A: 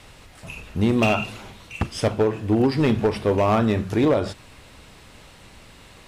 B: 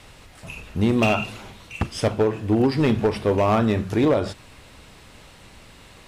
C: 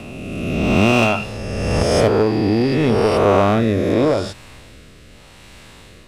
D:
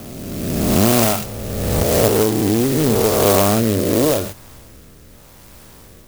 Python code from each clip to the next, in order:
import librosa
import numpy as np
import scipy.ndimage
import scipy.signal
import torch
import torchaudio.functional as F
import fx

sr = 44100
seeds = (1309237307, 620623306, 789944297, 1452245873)

y1 = x
y2 = fx.spec_swells(y1, sr, rise_s=2.57)
y2 = fx.rotary(y2, sr, hz=0.85)
y2 = y2 * 10.0 ** (2.5 / 20.0)
y3 = fx.clock_jitter(y2, sr, seeds[0], jitter_ms=0.12)